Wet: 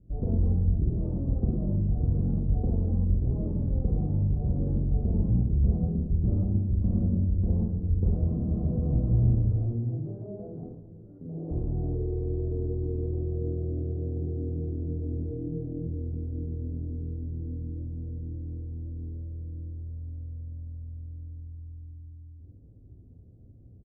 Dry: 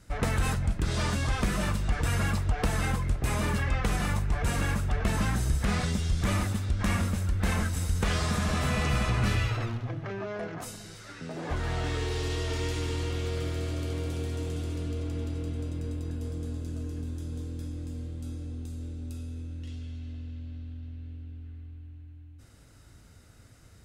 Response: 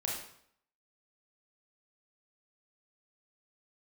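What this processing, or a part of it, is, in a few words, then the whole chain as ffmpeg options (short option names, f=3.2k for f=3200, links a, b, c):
next room: -filter_complex "[0:a]lowpass=f=420:w=0.5412,lowpass=f=420:w=1.3066[a];[1:a]atrim=start_sample=2205[b];[a][b]afir=irnorm=-1:irlink=0,asplit=3[c][d][e];[c]afade=t=out:st=15.3:d=0.02[f];[d]aecho=1:1:6.4:0.81,afade=t=in:st=15.3:d=0.02,afade=t=out:st=15.86:d=0.02[g];[e]afade=t=in:st=15.86:d=0.02[h];[f][g][h]amix=inputs=3:normalize=0"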